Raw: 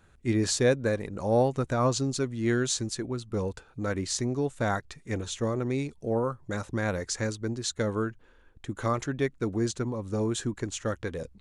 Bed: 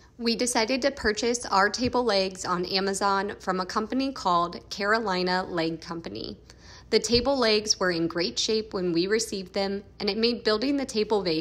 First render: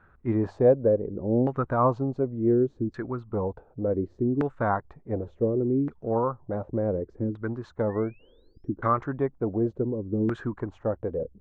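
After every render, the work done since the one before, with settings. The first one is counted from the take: 7.89–8.70 s: painted sound rise 1.7–5.9 kHz -37 dBFS; LFO low-pass saw down 0.68 Hz 280–1500 Hz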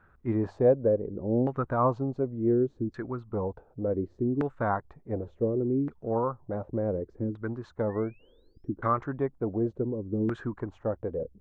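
trim -2.5 dB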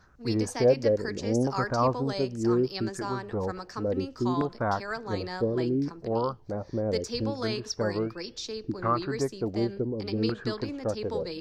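add bed -11 dB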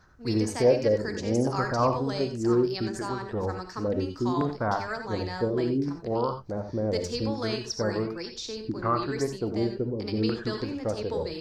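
gated-style reverb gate 110 ms rising, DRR 6 dB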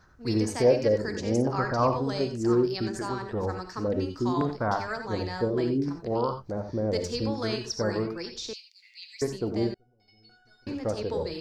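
1.41–2.01 s: low-pass 3.2 kHz -> 7.3 kHz; 8.53–9.22 s: steep high-pass 2.1 kHz 96 dB/octave; 9.74–10.67 s: feedback comb 730 Hz, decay 0.45 s, mix 100%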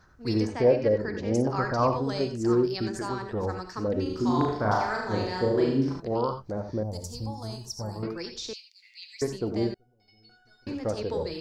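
0.47–1.34 s: low-pass 3 kHz; 4.02–6.00 s: flutter echo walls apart 6.4 m, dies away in 0.66 s; 6.83–8.03 s: FFT filter 120 Hz 0 dB, 450 Hz -16 dB, 820 Hz 0 dB, 1.6 kHz -21 dB, 2.3 kHz -21 dB, 11 kHz +10 dB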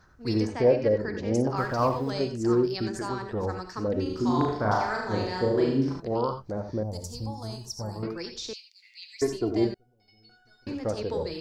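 1.57–2.11 s: companding laws mixed up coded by A; 9.22–9.65 s: comb 2.9 ms, depth 79%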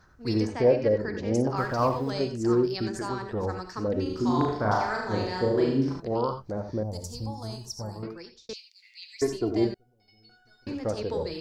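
7.50–8.49 s: fade out equal-power

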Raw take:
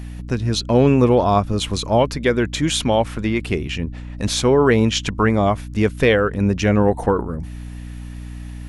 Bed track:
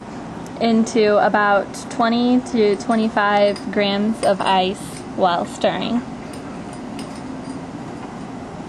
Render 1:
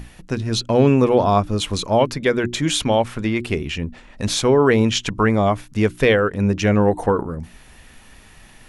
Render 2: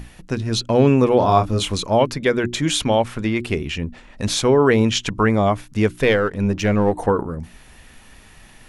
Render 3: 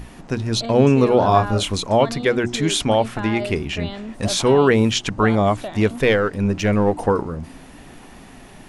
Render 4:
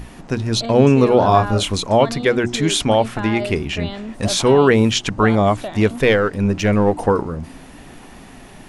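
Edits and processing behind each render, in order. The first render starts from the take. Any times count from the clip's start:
hum notches 60/120/180/240/300/360 Hz
1.18–1.73 s: doubling 27 ms -4.5 dB; 5.99–6.97 s: partial rectifier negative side -3 dB
add bed track -13.5 dB
trim +2 dB; peak limiter -1 dBFS, peak gain reduction 1 dB

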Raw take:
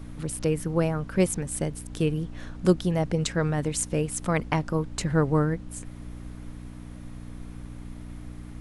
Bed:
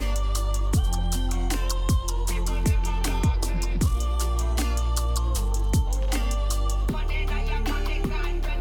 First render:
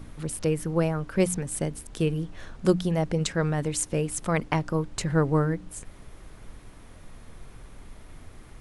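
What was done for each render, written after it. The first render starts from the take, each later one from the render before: de-hum 60 Hz, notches 5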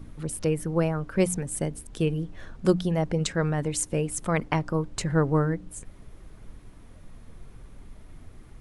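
noise reduction 6 dB, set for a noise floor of -48 dBFS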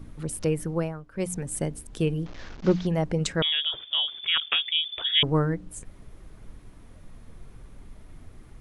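0.64–1.49 s: dip -14 dB, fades 0.40 s; 2.26–2.87 s: one-bit delta coder 32 kbps, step -38 dBFS; 3.42–5.23 s: frequency inversion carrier 3.5 kHz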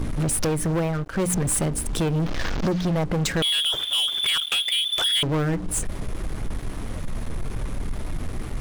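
compression 6:1, threshold -32 dBFS, peak gain reduction 15.5 dB; waveshaping leveller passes 5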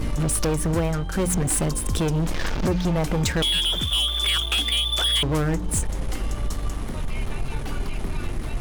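add bed -6.5 dB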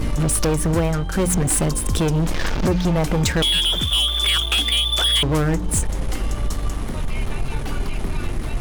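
trim +3.5 dB

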